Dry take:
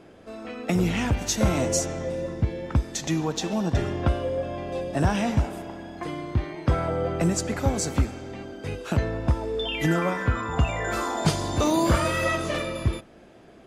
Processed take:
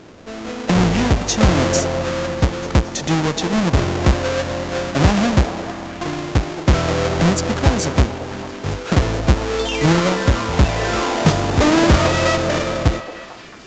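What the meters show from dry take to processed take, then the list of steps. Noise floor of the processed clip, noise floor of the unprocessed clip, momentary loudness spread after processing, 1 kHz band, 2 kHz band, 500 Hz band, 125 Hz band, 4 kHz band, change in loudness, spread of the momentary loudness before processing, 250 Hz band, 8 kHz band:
-34 dBFS, -50 dBFS, 11 LU, +8.0 dB, +8.5 dB, +8.0 dB, +8.0 dB, +9.5 dB, +8.0 dB, 11 LU, +8.0 dB, +5.0 dB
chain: half-waves squared off; delay with a stepping band-pass 0.223 s, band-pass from 530 Hz, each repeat 0.7 oct, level -7 dB; gain +3.5 dB; A-law 128 kbps 16000 Hz

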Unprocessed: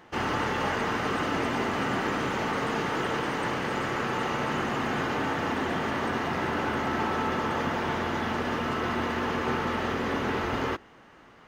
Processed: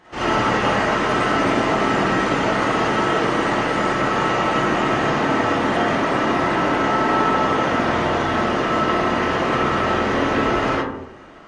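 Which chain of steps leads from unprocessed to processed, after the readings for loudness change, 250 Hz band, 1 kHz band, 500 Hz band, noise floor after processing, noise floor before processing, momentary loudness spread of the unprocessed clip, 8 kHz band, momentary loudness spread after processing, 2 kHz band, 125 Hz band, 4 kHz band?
+9.5 dB, +9.0 dB, +10.0 dB, +10.5 dB, -33 dBFS, -53 dBFS, 1 LU, +8.0 dB, 2 LU, +8.5 dB, +8.0 dB, +8.5 dB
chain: digital reverb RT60 0.8 s, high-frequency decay 0.35×, pre-delay 10 ms, DRR -9.5 dB; MP3 40 kbps 22050 Hz

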